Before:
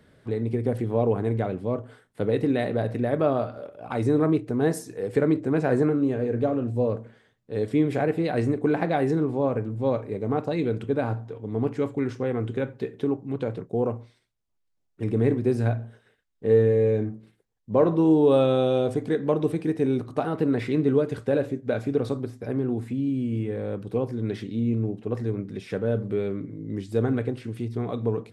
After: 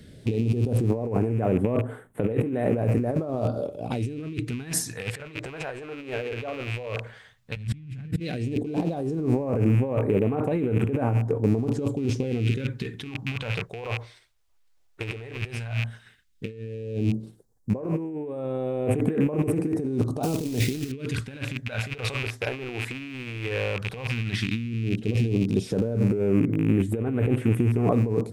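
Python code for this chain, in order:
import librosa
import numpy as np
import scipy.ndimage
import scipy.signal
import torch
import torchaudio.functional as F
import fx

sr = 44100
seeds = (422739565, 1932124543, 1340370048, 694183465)

y = fx.rattle_buzz(x, sr, strikes_db=-35.0, level_db=-30.0)
y = fx.low_shelf_res(y, sr, hz=250.0, db=13.5, q=1.5, at=(7.56, 8.2))
y = fx.over_compress(y, sr, threshold_db=-31.0, ratio=-1.0)
y = fx.quant_companded(y, sr, bits=4, at=(20.23, 20.92))
y = fx.phaser_stages(y, sr, stages=2, low_hz=190.0, high_hz=4400.0, hz=0.12, feedback_pct=30)
y = y * 10.0 ** (5.0 / 20.0)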